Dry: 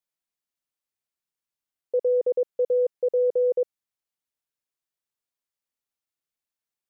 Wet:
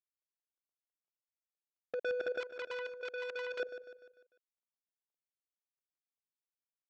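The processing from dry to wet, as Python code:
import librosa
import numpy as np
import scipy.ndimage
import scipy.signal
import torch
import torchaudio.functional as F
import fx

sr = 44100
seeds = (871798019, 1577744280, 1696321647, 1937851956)

p1 = scipy.ndimage.median_filter(x, 41, mode='constant')
p2 = scipy.signal.sosfilt(scipy.signal.butter(2, 410.0, 'highpass', fs=sr, output='sos'), p1)
p3 = fx.level_steps(p2, sr, step_db=11)
p4 = fx.chopper(p3, sr, hz=5.9, depth_pct=65, duty_pct=45)
p5 = 10.0 ** (-34.0 / 20.0) * (np.abs((p4 / 10.0 ** (-34.0 / 20.0) + 3.0) % 4.0 - 2.0) - 1.0)
p6 = fx.air_absorb(p5, sr, metres=160.0)
p7 = p6 + fx.echo_feedback(p6, sr, ms=149, feedback_pct=47, wet_db=-12, dry=0)
p8 = fx.transformer_sat(p7, sr, knee_hz=2200.0, at=(2.4, 3.6))
y = F.gain(torch.from_numpy(p8), 6.5).numpy()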